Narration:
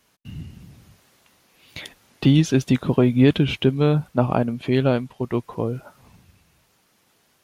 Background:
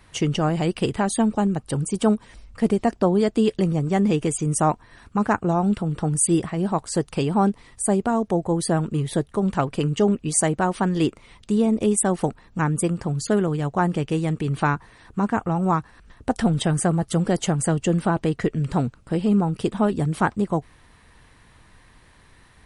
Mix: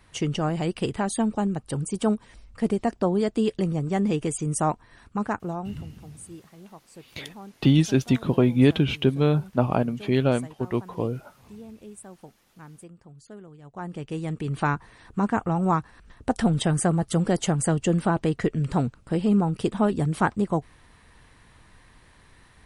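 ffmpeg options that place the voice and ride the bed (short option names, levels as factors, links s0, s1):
-filter_complex "[0:a]adelay=5400,volume=0.75[s0];[1:a]volume=7.94,afade=t=out:st=5.01:d=0.92:silence=0.105925,afade=t=in:st=13.62:d=1.26:silence=0.0794328[s1];[s0][s1]amix=inputs=2:normalize=0"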